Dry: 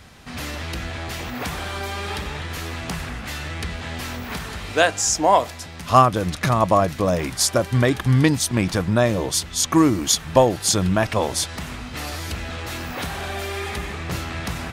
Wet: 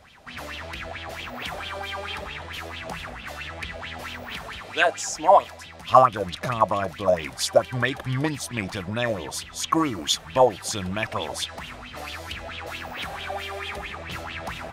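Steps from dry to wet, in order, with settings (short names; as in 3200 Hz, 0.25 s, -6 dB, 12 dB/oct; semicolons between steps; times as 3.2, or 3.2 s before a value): 4.61–5.16 HPF 110 Hz; LFO bell 4.5 Hz 560–3300 Hz +17 dB; gain -10.5 dB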